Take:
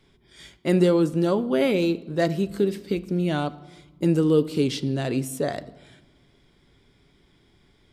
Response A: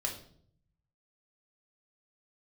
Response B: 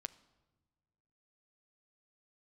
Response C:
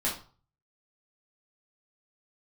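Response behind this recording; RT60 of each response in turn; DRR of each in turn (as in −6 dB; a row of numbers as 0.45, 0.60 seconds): B; 0.60 s, non-exponential decay, 0.40 s; 0.0, 13.0, −5.5 decibels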